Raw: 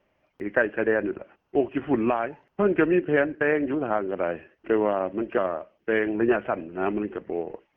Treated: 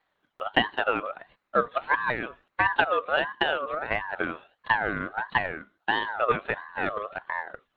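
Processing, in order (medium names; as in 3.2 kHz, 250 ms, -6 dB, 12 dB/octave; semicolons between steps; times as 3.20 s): transient shaper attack +7 dB, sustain +1 dB; ring modulator with a swept carrier 1.1 kHz, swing 25%, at 1.5 Hz; trim -3 dB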